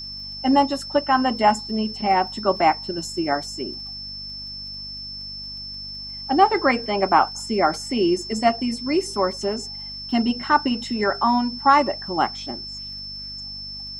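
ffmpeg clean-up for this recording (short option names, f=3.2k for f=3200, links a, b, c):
-af "adeclick=t=4,bandreject=f=49.1:t=h:w=4,bandreject=f=98.2:t=h:w=4,bandreject=f=147.3:t=h:w=4,bandreject=f=196.4:t=h:w=4,bandreject=f=245.5:t=h:w=4,bandreject=f=5.3k:w=30,agate=range=-21dB:threshold=-27dB"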